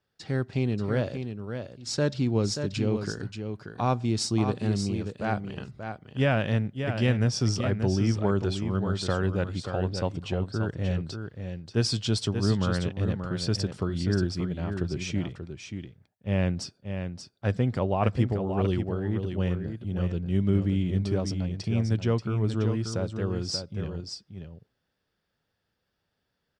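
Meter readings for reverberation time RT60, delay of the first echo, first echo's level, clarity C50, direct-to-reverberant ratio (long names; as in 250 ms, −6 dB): no reverb audible, 583 ms, −7.5 dB, no reverb audible, no reverb audible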